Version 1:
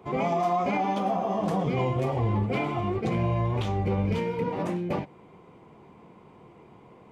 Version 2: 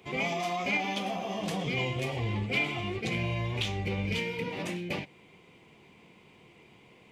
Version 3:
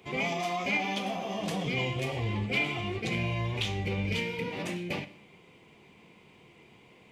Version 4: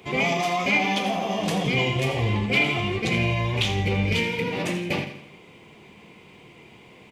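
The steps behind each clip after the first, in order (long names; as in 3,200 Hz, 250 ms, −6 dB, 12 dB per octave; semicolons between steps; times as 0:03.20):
high shelf with overshoot 1,700 Hz +12 dB, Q 1.5; level −6 dB
four-comb reverb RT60 0.67 s, combs from 27 ms, DRR 13.5 dB
repeating echo 83 ms, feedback 47%, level −11.5 dB; level +7.5 dB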